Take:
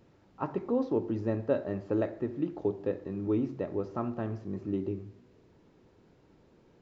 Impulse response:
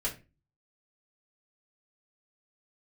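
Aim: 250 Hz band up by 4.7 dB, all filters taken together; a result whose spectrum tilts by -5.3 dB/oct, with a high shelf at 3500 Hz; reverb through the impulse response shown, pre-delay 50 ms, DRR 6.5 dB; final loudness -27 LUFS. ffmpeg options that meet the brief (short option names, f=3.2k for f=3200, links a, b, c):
-filter_complex "[0:a]equalizer=f=250:t=o:g=6,highshelf=f=3.5k:g=-6.5,asplit=2[a][b];[1:a]atrim=start_sample=2205,adelay=50[c];[b][c]afir=irnorm=-1:irlink=0,volume=-11dB[d];[a][d]amix=inputs=2:normalize=0,volume=2dB"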